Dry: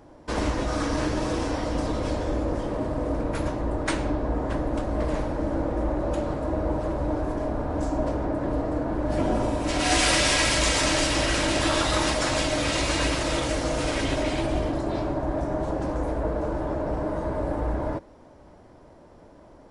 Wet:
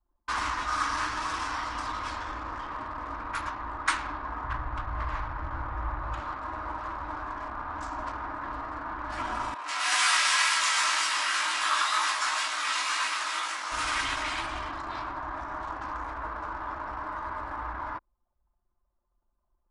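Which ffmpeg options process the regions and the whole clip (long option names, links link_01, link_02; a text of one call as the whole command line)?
ffmpeg -i in.wav -filter_complex "[0:a]asettb=1/sr,asplit=3[link_01][link_02][link_03];[link_01]atrim=end=4.444[link_04];[link_02]atrim=start=4.44:end=6.2,asetpts=PTS-STARTPTS,afade=type=in:duration=0.004:curve=qsin,afade=type=out:start_time=1.756:duration=0.004:curve=qsin,lowpass=frequency=3500:poles=1,lowshelf=frequency=170:width_type=q:width=1.5:gain=8.5[link_05];[link_03]atrim=start=6.196[link_06];[link_04][link_05]acrossfade=duration=0.004:curve1=hsin:curve2=qsin[link_07];[link_07][link_06]acrossfade=duration=0.004:curve1=qsin:curve2=hsin,asettb=1/sr,asplit=3[link_08][link_09][link_10];[link_08]atrim=end=9.544[link_11];[link_09]atrim=start=9.54:end=13.72,asetpts=PTS-STARTPTS,afade=type=in:duration=0.004:curve=qsin,afade=type=out:start_time=4.176:duration=0.004:curve=qsin,flanger=delay=18.5:depth=3.1:speed=2,highpass=450[link_12];[link_10]atrim=start=13.716[link_13];[link_11][link_12]acrossfade=duration=0.004:curve1=hsin:curve2=qsin[link_14];[link_14][link_13]acrossfade=duration=0.004:curve1=qsin:curve2=hsin,equalizer=frequency=160:width_type=o:width=0.45:gain=-14.5,anlmdn=1.58,lowshelf=frequency=770:width_type=q:width=3:gain=-13.5" out.wav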